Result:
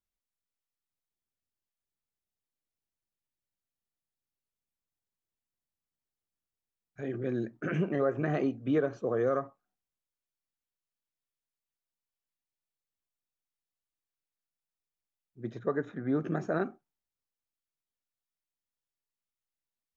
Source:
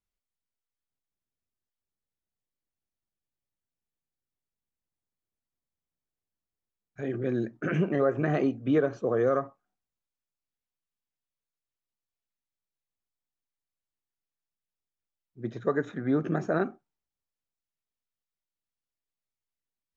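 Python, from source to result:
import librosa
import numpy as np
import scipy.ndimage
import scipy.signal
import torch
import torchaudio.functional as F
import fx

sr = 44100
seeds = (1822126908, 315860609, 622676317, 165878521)

y = fx.high_shelf(x, sr, hz=3800.0, db=-10.5, at=(15.59, 16.15))
y = F.gain(torch.from_numpy(y), -3.5).numpy()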